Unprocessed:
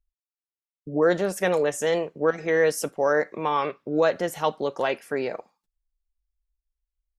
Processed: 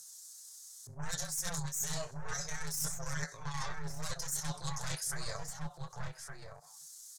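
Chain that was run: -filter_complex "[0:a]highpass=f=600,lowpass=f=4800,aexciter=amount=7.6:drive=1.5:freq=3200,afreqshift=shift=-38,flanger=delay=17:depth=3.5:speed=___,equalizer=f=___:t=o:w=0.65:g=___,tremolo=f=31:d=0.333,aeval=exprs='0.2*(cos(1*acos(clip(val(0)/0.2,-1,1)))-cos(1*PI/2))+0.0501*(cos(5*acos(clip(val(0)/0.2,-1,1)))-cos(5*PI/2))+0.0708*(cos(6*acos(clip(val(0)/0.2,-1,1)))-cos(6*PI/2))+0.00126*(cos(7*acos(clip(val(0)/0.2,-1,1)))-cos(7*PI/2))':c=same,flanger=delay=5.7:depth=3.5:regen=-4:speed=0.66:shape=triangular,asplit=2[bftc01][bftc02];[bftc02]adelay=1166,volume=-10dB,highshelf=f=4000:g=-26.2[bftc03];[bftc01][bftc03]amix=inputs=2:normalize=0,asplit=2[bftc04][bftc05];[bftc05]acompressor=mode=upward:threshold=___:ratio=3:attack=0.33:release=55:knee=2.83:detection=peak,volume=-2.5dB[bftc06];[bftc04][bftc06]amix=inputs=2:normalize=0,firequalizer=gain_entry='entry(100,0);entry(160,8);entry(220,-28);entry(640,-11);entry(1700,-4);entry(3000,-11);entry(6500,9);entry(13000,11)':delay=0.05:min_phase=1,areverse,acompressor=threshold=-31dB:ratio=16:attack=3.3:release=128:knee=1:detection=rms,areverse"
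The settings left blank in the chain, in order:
2.7, 2600, -11, -30dB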